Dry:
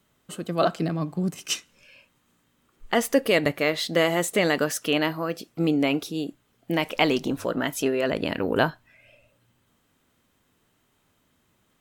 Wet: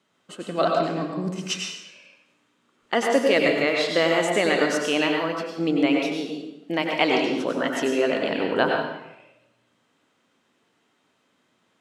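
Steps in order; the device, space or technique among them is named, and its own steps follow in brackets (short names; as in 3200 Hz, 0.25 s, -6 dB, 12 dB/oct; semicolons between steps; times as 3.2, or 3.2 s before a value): supermarket ceiling speaker (BPF 230–6300 Hz; reverb RT60 0.90 s, pre-delay 87 ms, DRR 0.5 dB)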